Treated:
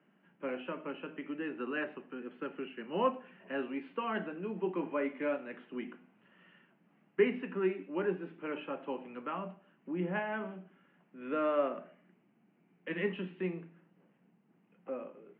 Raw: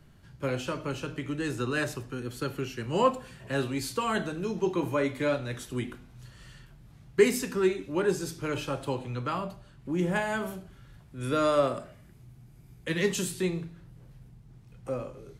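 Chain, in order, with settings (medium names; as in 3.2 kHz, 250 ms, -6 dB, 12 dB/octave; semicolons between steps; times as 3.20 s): Chebyshev band-pass 180–2900 Hz, order 5; distance through air 55 m; trim -5.5 dB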